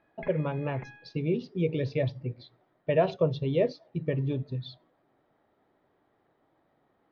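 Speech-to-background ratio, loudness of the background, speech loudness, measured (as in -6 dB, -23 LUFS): 18.5 dB, -49.0 LUFS, -30.5 LUFS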